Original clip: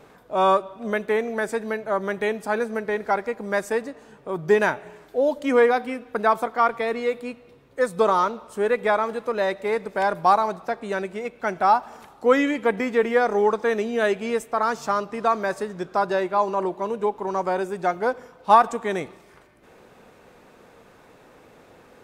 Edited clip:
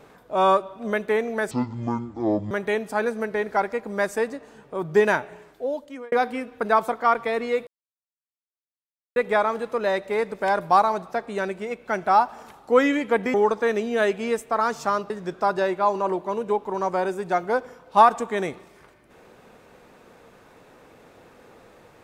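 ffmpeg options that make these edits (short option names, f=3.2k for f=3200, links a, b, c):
-filter_complex "[0:a]asplit=8[a][b][c][d][e][f][g][h];[a]atrim=end=1.514[i];[b]atrim=start=1.51:end=2.05,asetpts=PTS-STARTPTS,asetrate=23814,aresample=44100[j];[c]atrim=start=2.046:end=5.66,asetpts=PTS-STARTPTS,afade=t=out:st=2.724:d=0.89[k];[d]atrim=start=5.66:end=7.21,asetpts=PTS-STARTPTS,afade=t=in:d=0.004:c=hsin,afade=t=out:st=1.546:d=0.004:c=hsin[l];[e]atrim=start=7.21:end=8.7,asetpts=PTS-STARTPTS,volume=0[m];[f]atrim=start=8.7:end=12.882,asetpts=PTS-STARTPTS,afade=t=in:d=0.004:c=hsin[n];[g]atrim=start=13.358:end=15.122[o];[h]atrim=start=15.628[p];[i][j]acrossfade=d=0.004:c1=hsin:c2=hsin[q];[k][l][m][n]concat=n=4:v=0:a=1[r];[q][r]acrossfade=d=0.004:c1=hsin:c2=hsin[s];[s][o]acrossfade=d=0.004:c1=hsin:c2=hsin[t];[t][p]acrossfade=d=0.004:c1=hsin:c2=hsin"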